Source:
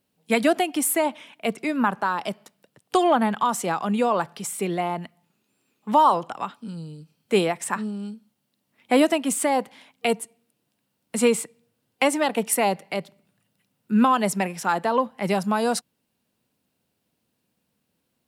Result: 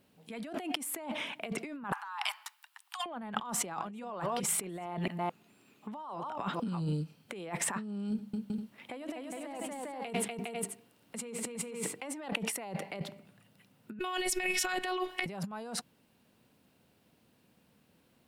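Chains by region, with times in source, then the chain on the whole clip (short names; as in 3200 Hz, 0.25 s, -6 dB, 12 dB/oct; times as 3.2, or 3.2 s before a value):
1.92–3.06 steep high-pass 830 Hz 72 dB/oct + high shelf 11000 Hz +5.5 dB + overloaded stage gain 17 dB
3.56–6.93 reverse delay 0.217 s, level -14 dB + notch 500 Hz, Q 15
8.09–12.06 notches 50/100/150/200/250/300/350/400 Hz + tapped delay 94/244/409/491 ms -17.5/-5/-4.5/-12 dB
13.99–15.26 resonant high shelf 1600 Hz +10 dB, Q 1.5 + compressor 2.5:1, threshold -31 dBFS + robotiser 367 Hz
whole clip: tone controls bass 0 dB, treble -6 dB; limiter -18.5 dBFS; negative-ratio compressor -38 dBFS, ratio -1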